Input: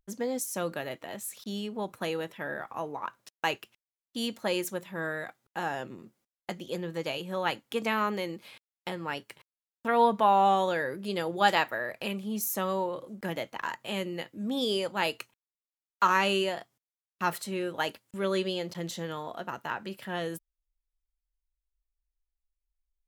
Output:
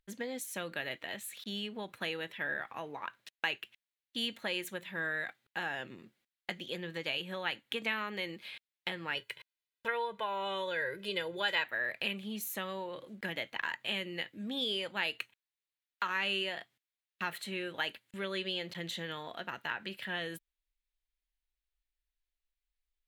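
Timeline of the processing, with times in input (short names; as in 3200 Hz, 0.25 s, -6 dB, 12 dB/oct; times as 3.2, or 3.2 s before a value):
9.15–11.64 comb 2 ms, depth 78%
whole clip: dynamic EQ 5100 Hz, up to -6 dB, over -56 dBFS, Q 2.7; compressor 3:1, threshold -31 dBFS; band shelf 2600 Hz +10.5 dB; gain -5.5 dB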